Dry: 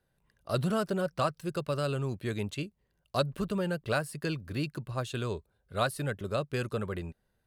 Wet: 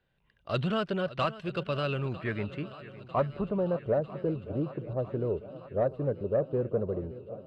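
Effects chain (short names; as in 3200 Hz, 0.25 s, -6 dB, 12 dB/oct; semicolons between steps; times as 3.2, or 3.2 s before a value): low-pass sweep 3000 Hz -> 540 Hz, 1.76–3.98; swung echo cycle 0.949 s, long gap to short 1.5:1, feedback 62%, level -17.5 dB; soft clip -16 dBFS, distortion -24 dB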